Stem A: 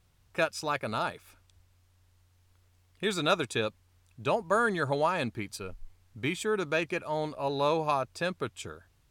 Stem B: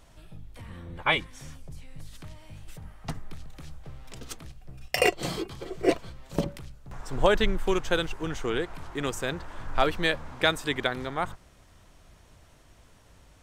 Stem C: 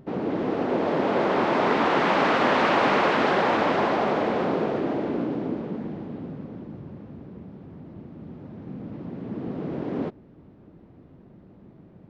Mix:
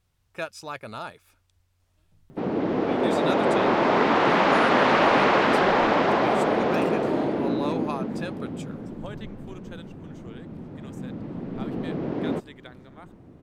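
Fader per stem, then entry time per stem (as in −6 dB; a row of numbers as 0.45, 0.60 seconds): −4.5, −18.5, +1.5 decibels; 0.00, 1.80, 2.30 seconds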